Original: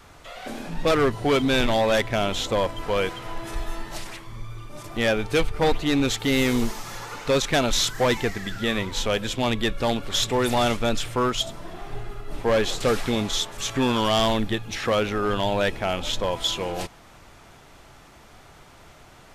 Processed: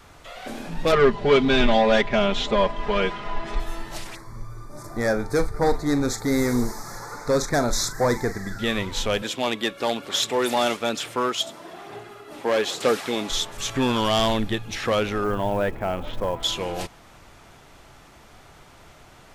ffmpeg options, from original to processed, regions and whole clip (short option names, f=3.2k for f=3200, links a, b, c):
-filter_complex "[0:a]asettb=1/sr,asplit=3[a][b][c];[a]atrim=end=0.924[d];[b]atrim=start=0.92:end=3.6,asetpts=PTS-STARTPTS,afade=t=in:d=0.004:c=qsin,afade=t=out:st=2.676:d=0.004:c=qsin,lowpass=4.2k,aecho=1:1:4.9:0.99,atrim=end_sample=118188[e];[c]atrim=start=3.596[f];[d][e]acrossfade=d=0.004:c1=hsin:c2=qsin[g];[g][f]acrossfade=d=0.004:c1=qsin:c2=hsin,asettb=1/sr,asplit=3[h][i][j];[h]atrim=end=4.154[k];[i]atrim=start=4.15:end=8.59,asetpts=PTS-STARTPTS,afade=t=in:d=0.004:c=qsin,afade=t=out:st=4.436:d=0.004:c=qsin,asuperstop=centerf=2900:order=4:qfactor=1.2,asplit=2[l][m];[m]adelay=41,volume=-12dB[n];[l][n]amix=inputs=2:normalize=0,atrim=end_sample=195804[o];[j]atrim=start=8.586[p];[k][o]acrossfade=d=0.004:c1=hsin:c2=qsin[q];[q][p]acrossfade=d=0.004:c1=qsin:c2=hsin,asettb=1/sr,asplit=3[r][s][t];[r]atrim=end=9.224[u];[s]atrim=start=9.22:end=13.3,asetpts=PTS-STARTPTS,afade=t=in:d=0.004:c=qsin,afade=t=out:st=4.076:d=0.004:c=qsin,highpass=250,aphaser=in_gain=1:out_gain=1:delay=3.6:decay=0.23:speed=1.1:type=sinusoidal[v];[t]atrim=start=13.296[w];[u][v]acrossfade=d=0.004:c1=hsin:c2=qsin[x];[x][w]acrossfade=d=0.004:c1=qsin:c2=hsin,asettb=1/sr,asplit=3[y][z][aa];[y]atrim=end=15.244[ab];[z]atrim=start=15.24:end=16.43,asetpts=PTS-STARTPTS,afade=t=in:d=0.004:c=qsin,afade=t=out:st=1.186:d=0.004:c=qsin,lowpass=1.6k,acrusher=bits=7:mode=log:mix=0:aa=0.000001[ac];[aa]atrim=start=16.426[ad];[ab][ac]acrossfade=d=0.004:c1=hsin:c2=qsin[ae];[ae][ad]acrossfade=d=0.004:c1=qsin:c2=hsin"